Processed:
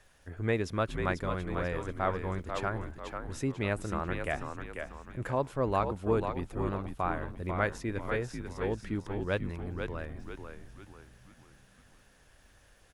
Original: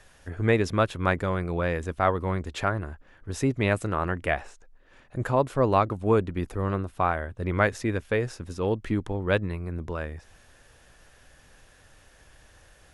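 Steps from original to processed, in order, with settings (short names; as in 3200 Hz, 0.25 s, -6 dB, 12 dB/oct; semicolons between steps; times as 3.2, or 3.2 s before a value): crackle 270/s -55 dBFS; frequency-shifting echo 0.492 s, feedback 41%, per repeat -70 Hz, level -6 dB; gain -7.5 dB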